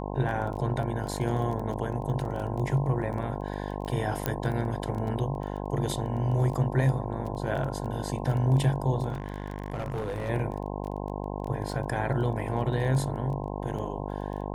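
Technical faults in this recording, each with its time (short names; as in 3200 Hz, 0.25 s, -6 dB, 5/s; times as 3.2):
buzz 50 Hz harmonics 21 -34 dBFS
crackle 14/s -33 dBFS
4.26 pop -11 dBFS
9.12–10.3 clipped -27.5 dBFS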